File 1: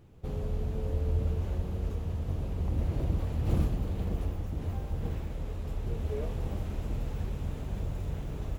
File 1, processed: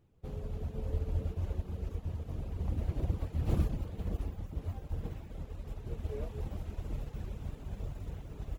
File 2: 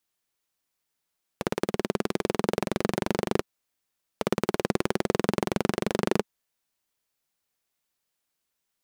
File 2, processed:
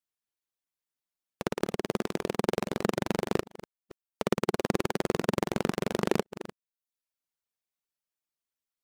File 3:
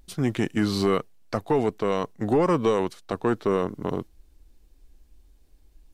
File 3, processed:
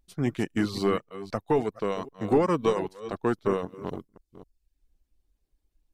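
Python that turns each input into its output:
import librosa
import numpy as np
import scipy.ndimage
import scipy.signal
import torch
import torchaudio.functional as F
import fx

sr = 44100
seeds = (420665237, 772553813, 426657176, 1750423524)

y = fx.reverse_delay(x, sr, ms=261, wet_db=-9)
y = fx.dereverb_blind(y, sr, rt60_s=0.59)
y = fx.upward_expand(y, sr, threshold_db=-46.0, expansion=1.5)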